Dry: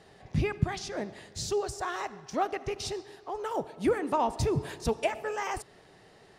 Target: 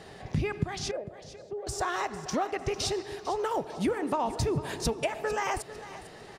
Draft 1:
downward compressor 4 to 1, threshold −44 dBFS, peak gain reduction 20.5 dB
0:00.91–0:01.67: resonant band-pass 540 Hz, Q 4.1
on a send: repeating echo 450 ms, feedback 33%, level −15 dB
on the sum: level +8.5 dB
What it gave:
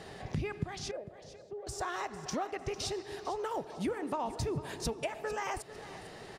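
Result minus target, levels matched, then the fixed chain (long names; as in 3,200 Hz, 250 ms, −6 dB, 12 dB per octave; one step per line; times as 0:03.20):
downward compressor: peak gain reduction +6 dB
downward compressor 4 to 1, threshold −36 dBFS, peak gain reduction 14.5 dB
0:00.91–0:01.67: resonant band-pass 540 Hz, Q 4.1
on a send: repeating echo 450 ms, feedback 33%, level −15 dB
on the sum: level +8.5 dB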